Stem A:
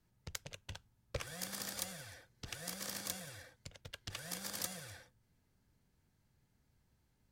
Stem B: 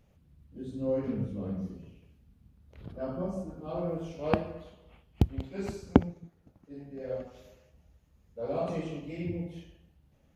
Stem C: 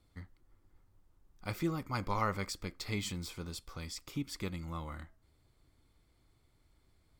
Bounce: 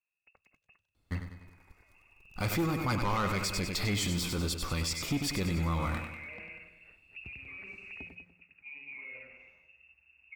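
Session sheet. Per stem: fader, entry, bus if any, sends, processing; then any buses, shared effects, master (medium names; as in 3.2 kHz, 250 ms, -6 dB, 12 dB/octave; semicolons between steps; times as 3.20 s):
-17.0 dB, 0.00 s, bus A, no send, echo send -21.5 dB, none
-2.0 dB, 1.95 s, bus A, no send, echo send -21.5 dB, saturation -17.5 dBFS, distortion -8 dB
+1.5 dB, 0.95 s, no bus, no send, echo send -8.5 dB, waveshaping leveller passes 3
bus A: 0.0 dB, frequency inversion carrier 2.7 kHz; peak limiter -38.5 dBFS, peak gain reduction 23 dB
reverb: none
echo: feedback delay 97 ms, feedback 50%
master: peak limiter -23.5 dBFS, peak gain reduction 7.5 dB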